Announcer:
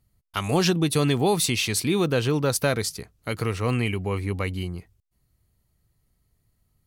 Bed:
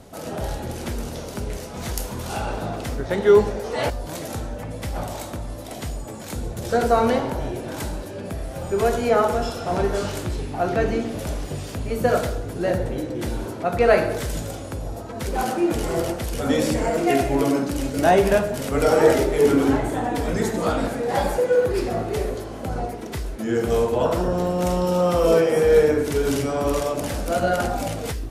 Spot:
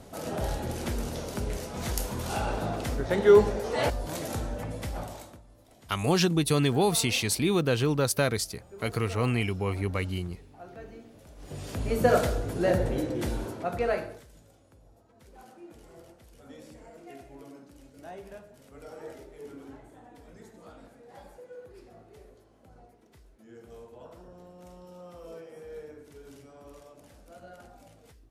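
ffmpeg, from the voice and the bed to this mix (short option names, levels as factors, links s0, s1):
-filter_complex "[0:a]adelay=5550,volume=0.75[s0];[1:a]volume=8.41,afade=t=out:st=4.64:d=0.78:silence=0.0944061,afade=t=in:st=11.36:d=0.53:silence=0.0841395,afade=t=out:st=13.04:d=1.21:silence=0.0530884[s1];[s0][s1]amix=inputs=2:normalize=0"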